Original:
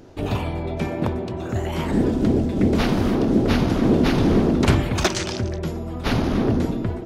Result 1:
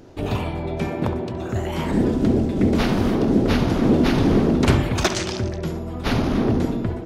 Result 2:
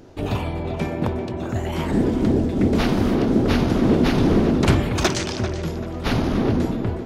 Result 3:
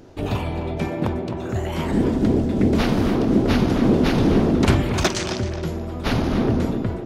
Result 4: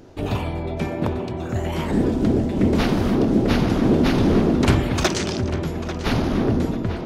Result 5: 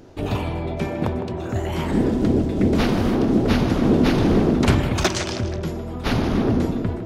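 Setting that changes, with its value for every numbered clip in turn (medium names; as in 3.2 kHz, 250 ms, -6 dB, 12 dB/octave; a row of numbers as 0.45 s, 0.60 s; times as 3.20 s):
tape echo, time: 68 ms, 390 ms, 262 ms, 845 ms, 158 ms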